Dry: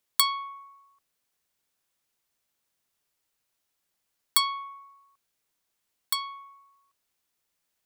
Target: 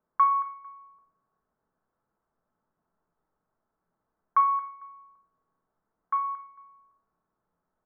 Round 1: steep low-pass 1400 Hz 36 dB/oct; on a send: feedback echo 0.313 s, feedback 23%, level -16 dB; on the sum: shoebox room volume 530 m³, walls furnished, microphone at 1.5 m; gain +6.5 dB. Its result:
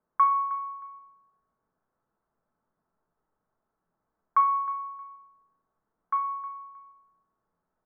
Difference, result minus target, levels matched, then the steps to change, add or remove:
echo 88 ms late
change: feedback echo 0.225 s, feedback 23%, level -16 dB

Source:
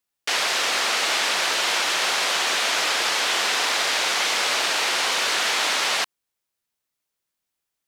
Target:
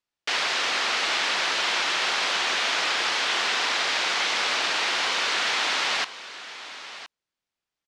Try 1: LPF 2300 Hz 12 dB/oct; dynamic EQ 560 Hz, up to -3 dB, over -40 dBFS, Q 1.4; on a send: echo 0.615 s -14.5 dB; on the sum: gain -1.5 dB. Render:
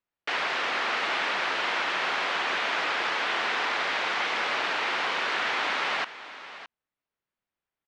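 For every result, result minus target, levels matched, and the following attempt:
echo 0.403 s early; 4000 Hz band -4.0 dB
LPF 2300 Hz 12 dB/oct; dynamic EQ 560 Hz, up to -3 dB, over -40 dBFS, Q 1.4; on a send: echo 1.018 s -14.5 dB; on the sum: gain -1.5 dB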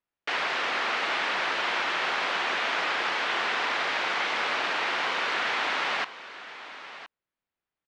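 4000 Hz band -3.5 dB
LPF 5300 Hz 12 dB/oct; dynamic EQ 560 Hz, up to -3 dB, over -40 dBFS, Q 1.4; on a send: echo 1.018 s -14.5 dB; on the sum: gain -1.5 dB

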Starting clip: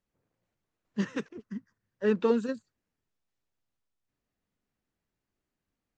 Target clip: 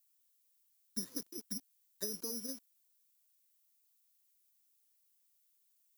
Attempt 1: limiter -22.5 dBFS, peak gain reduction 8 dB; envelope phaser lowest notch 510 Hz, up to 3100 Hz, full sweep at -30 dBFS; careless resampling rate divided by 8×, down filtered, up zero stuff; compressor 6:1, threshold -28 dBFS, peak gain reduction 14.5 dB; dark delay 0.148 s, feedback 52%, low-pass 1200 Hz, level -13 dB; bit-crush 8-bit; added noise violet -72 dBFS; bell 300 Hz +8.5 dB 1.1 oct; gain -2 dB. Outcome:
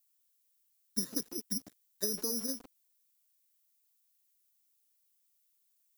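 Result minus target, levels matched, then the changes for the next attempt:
compressor: peak gain reduction -6 dB
change: compressor 6:1, threshold -35.5 dBFS, peak gain reduction 20.5 dB

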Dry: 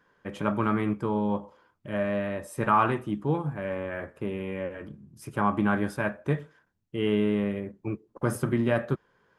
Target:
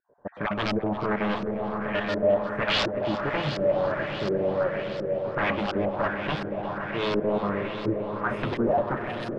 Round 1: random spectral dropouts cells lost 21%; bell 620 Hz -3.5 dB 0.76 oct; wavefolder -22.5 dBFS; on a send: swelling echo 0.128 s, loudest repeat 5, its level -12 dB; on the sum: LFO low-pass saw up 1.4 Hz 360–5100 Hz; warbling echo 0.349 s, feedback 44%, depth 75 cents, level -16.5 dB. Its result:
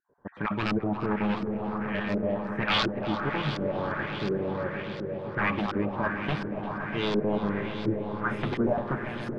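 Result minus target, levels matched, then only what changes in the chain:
500 Hz band -3.0 dB
change: bell 620 Hz +8 dB 0.76 oct

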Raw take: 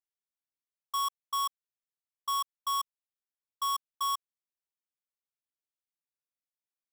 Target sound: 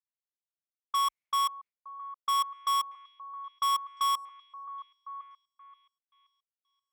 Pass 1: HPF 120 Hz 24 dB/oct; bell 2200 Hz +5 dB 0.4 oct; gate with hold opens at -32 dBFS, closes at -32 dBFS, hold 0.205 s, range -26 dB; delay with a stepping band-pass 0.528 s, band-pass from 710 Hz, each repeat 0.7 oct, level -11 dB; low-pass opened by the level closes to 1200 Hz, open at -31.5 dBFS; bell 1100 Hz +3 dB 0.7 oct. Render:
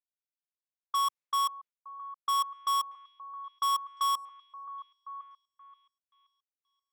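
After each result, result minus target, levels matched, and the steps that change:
2000 Hz band -5.0 dB; 125 Hz band -3.5 dB
change: first bell 2200 Hz +16 dB 0.4 oct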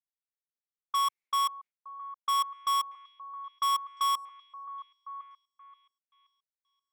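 125 Hz band -5.0 dB
change: HPF 34 Hz 24 dB/oct

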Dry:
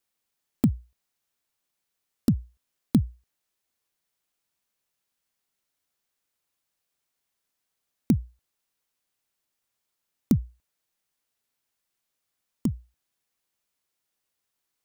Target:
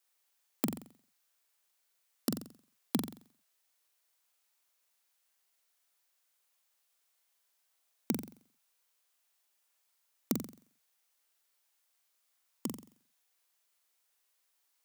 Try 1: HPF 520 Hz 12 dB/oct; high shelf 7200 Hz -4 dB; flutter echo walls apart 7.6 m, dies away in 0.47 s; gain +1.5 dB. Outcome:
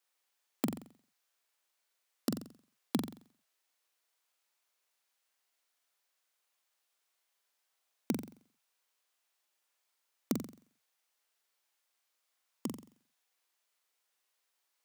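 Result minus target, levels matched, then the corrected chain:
8000 Hz band -3.0 dB
HPF 520 Hz 12 dB/oct; high shelf 7200 Hz +3 dB; flutter echo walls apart 7.6 m, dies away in 0.47 s; gain +1.5 dB

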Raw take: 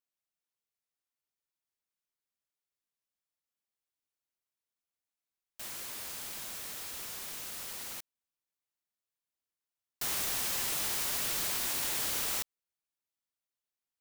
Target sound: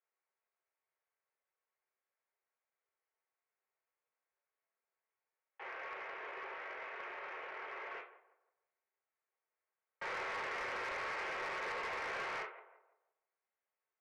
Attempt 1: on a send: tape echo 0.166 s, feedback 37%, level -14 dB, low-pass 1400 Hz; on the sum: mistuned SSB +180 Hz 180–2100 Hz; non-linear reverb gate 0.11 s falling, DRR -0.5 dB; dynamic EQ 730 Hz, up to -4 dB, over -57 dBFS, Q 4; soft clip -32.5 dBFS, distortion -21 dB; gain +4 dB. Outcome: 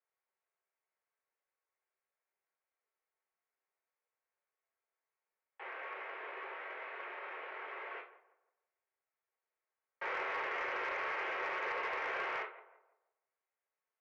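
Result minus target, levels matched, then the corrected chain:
soft clip: distortion -9 dB
on a send: tape echo 0.166 s, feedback 37%, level -14 dB, low-pass 1400 Hz; on the sum: mistuned SSB +180 Hz 180–2100 Hz; non-linear reverb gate 0.11 s falling, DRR -0.5 dB; dynamic EQ 730 Hz, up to -4 dB, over -57 dBFS, Q 4; soft clip -40 dBFS, distortion -12 dB; gain +4 dB

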